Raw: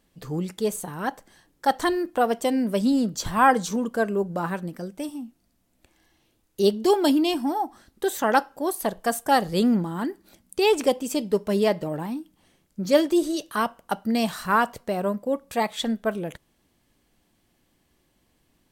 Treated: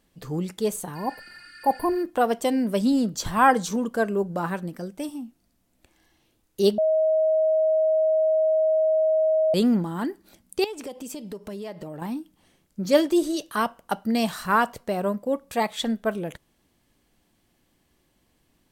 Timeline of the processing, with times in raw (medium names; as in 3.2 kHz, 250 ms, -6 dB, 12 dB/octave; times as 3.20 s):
0.98–1.97 s: spectral replace 1.1–9.2 kHz after
6.78–9.54 s: bleep 632 Hz -17.5 dBFS
10.64–12.02 s: compression, threshold -33 dBFS